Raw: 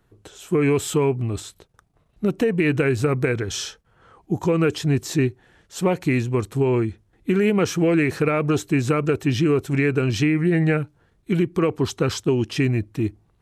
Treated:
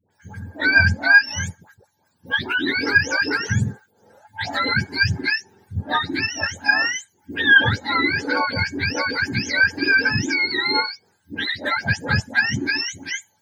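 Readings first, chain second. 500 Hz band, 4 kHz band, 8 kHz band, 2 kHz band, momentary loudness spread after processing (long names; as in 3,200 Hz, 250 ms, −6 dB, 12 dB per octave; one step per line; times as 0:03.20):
−11.0 dB, +10.0 dB, 0.0 dB, +14.0 dB, 15 LU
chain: frequency axis turned over on the octave scale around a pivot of 820 Hz
hollow resonant body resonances 860/1,600 Hz, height 16 dB, ringing for 50 ms
all-pass dispersion highs, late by 109 ms, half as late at 820 Hz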